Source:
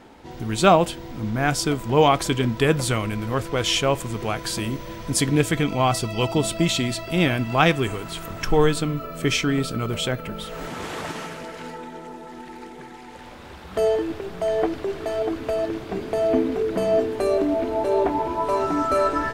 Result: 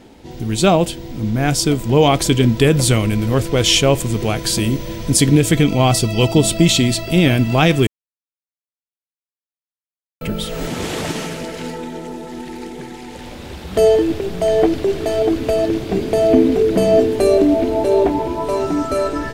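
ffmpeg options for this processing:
-filter_complex "[0:a]asplit=3[s0][s1][s2];[s0]atrim=end=7.87,asetpts=PTS-STARTPTS,afade=t=out:st=7.866:d=0.004:c=hsin[s3];[s1]atrim=start=7.87:end=10.21,asetpts=PTS-STARTPTS,volume=0[s4];[s2]atrim=start=10.21,asetpts=PTS-STARTPTS,afade=t=in:d=0.004:c=hsin[s5];[s3][s4][s5]concat=n=3:v=0:a=1,equalizer=f=1200:t=o:w=1.7:g=-10,dynaudnorm=f=540:g=7:m=1.78,alimiter=level_in=2.37:limit=0.891:release=50:level=0:latency=1,volume=0.891"

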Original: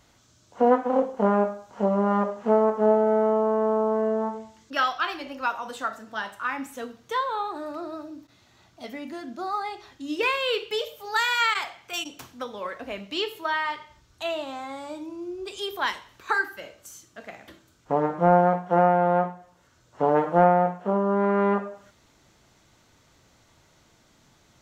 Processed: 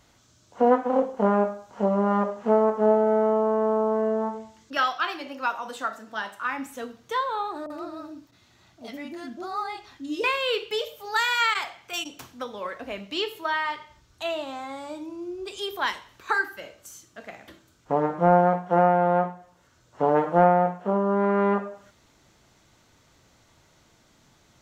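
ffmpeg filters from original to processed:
-filter_complex "[0:a]asettb=1/sr,asplit=3[s0][s1][s2];[s0]atrim=end=4.774[s3];[s1]atrim=start=4.77:end=6.46,asetpts=PTS-STARTPTS,afade=t=in:d=0.004:c=qsin,afade=t=out:st=1.686:d=0.004:c=qsin,highpass=150[s4];[s2]atrim=start=6.456[s5];[s3][s4]acrossfade=d=0.004:c1=hsin:c2=qsin[s6];[s6][s5]acrossfade=d=0.004:c1=qsin:c2=hsin,asettb=1/sr,asplit=3[s7][s8][s9];[s7]atrim=end=7.664[s10];[s8]atrim=start=7.66:end=10.24,asetpts=PTS-STARTPTS,afade=t=in:d=0.004:c=qsin,afade=t=out:st=2.576:d=0.004:c=qsin,acrossover=split=630[s11][s12];[s12]adelay=40[s13];[s11][s13]amix=inputs=2:normalize=0,atrim=end_sample=113778[s14];[s9]atrim=start=10.236[s15];[s10][s14]acrossfade=d=0.004:c1=hsin:c2=qsin[s16];[s16][s15]acrossfade=d=0.004:c1=qsin:c2=hsin"

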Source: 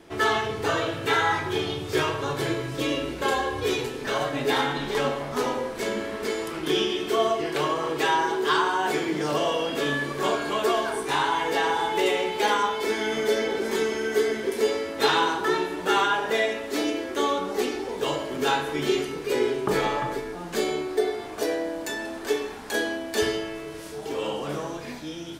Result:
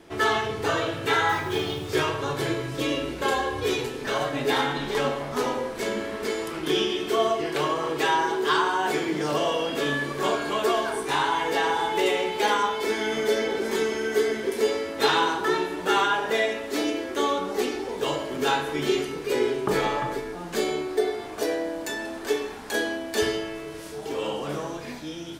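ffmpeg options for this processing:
-filter_complex "[0:a]asettb=1/sr,asplit=3[s0][s1][s2];[s0]atrim=end=1.294[s3];[s1]atrim=start=1.29:end=1.9,asetpts=PTS-STARTPTS,afade=t=in:d=0.004:c=qsin,afade=t=out:st=0.606:d=0.004:c=qsin,acrusher=bits=6:mode=log:mix=0:aa=0.000001[s4];[s2]atrim=start=1.896[s5];[s3][s4]acrossfade=d=0.004:c1=hsin:c2=qsin[s6];[s6][s5]acrossfade=d=0.004:c1=qsin:c2=hsin"

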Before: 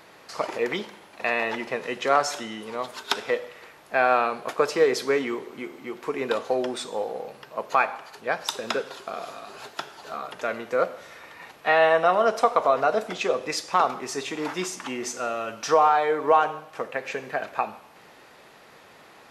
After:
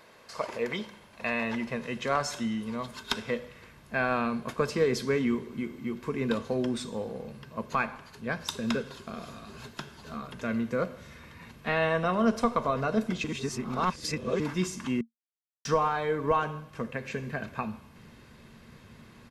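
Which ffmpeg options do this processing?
-filter_complex "[0:a]asplit=5[s0][s1][s2][s3][s4];[s0]atrim=end=13.242[s5];[s1]atrim=start=13.238:end=14.402,asetpts=PTS-STARTPTS,areverse[s6];[s2]atrim=start=14.398:end=15.01,asetpts=PTS-STARTPTS,afade=t=out:st=0.608:d=0.004:c=hsin[s7];[s3]atrim=start=15.01:end=15.65,asetpts=PTS-STARTPTS,volume=0[s8];[s4]atrim=start=15.65,asetpts=PTS-STARTPTS,afade=t=in:d=0.004:c=hsin[s9];[s5][s6]acrossfade=d=0.004:c1=hsin:c2=hsin[s10];[s7][s8][s9]concat=n=3:v=0:a=1[s11];[s10][s11]acrossfade=d=0.004:c1=hsin:c2=hsin,equalizer=f=230:t=o:w=0.24:g=11.5,aecho=1:1:1.9:0.38,asubboost=boost=11.5:cutoff=170,volume=0.531"

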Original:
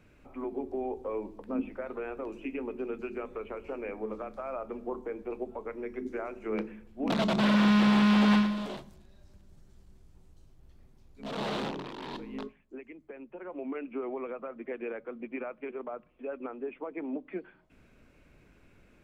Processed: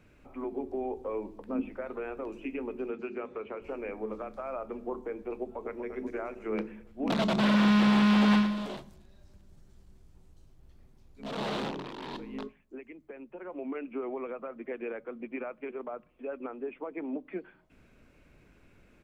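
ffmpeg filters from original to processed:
-filter_complex "[0:a]asettb=1/sr,asplit=3[s0][s1][s2];[s0]atrim=end=2.904[s3];[s1]atrim=start=2.9:end=3.62,asetpts=PTS-STARTPTS,afade=t=in:d=0.004:c=qsin,afade=t=out:st=0.716:d=0.004:c=qsin,highpass=110,lowpass=5500[s4];[s2]atrim=start=3.616[s5];[s3][s4]acrossfade=d=0.004:c1=hsin:c2=qsin[s6];[s6][s5]acrossfade=d=0.004:c1=qsin:c2=hsin,asplit=2[s7][s8];[s8]afade=t=in:st=5.38:d=0.01,afade=t=out:st=5.86:d=0.01,aecho=0:1:240|480|720|960|1200|1440|1680:0.398107|0.218959|0.120427|0.0662351|0.0364293|0.0200361|0.0110199[s9];[s7][s9]amix=inputs=2:normalize=0"

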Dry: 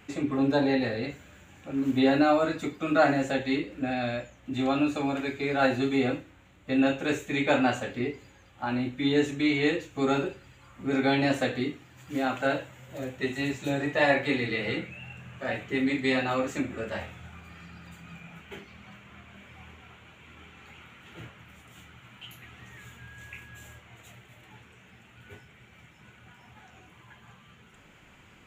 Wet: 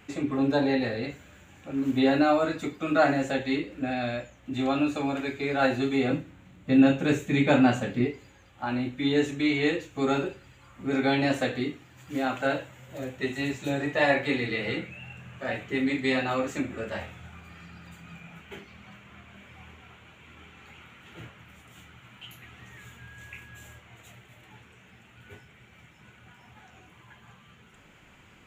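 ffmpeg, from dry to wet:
-filter_complex "[0:a]asettb=1/sr,asplit=3[s0][s1][s2];[s0]atrim=end=6.104[s3];[s1]atrim=start=6.1:end=8.07,asetpts=PTS-STARTPTS,afade=t=in:d=0.004:c=qsin,afade=t=out:st=1.966:d=0.004:c=qsin,equalizer=f=170:w=1:g=11[s4];[s2]atrim=start=8.066[s5];[s3][s4]acrossfade=d=0.004:c1=hsin:c2=qsin[s6];[s6][s5]acrossfade=d=0.004:c1=qsin:c2=hsin"

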